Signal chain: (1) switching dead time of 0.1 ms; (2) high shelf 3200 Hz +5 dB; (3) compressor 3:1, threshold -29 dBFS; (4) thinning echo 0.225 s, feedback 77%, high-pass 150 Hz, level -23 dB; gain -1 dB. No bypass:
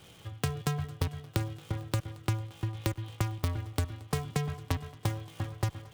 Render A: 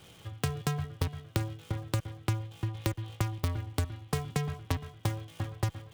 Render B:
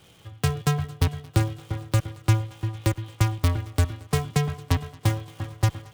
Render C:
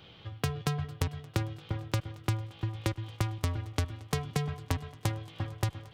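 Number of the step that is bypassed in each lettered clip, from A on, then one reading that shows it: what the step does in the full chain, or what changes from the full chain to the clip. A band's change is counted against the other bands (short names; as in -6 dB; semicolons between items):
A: 4, echo-to-direct -19.5 dB to none; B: 3, mean gain reduction 5.0 dB; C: 1, distortion -21 dB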